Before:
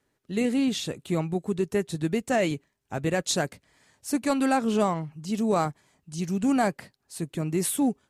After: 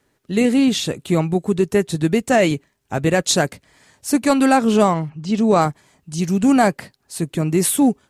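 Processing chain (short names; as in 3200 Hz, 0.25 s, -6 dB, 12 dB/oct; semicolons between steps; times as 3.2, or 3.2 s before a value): 5.09–5.6 LPF 3900 Hz -> 7500 Hz 12 dB/oct; gain +9 dB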